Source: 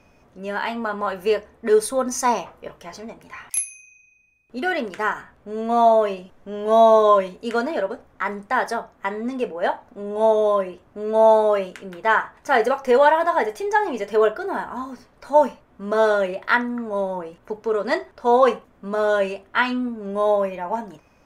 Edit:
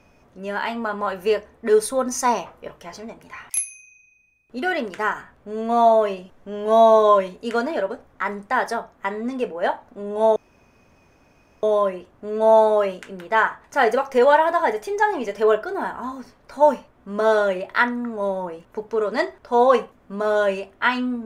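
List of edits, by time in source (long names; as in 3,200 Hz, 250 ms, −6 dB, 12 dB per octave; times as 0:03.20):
0:10.36: splice in room tone 1.27 s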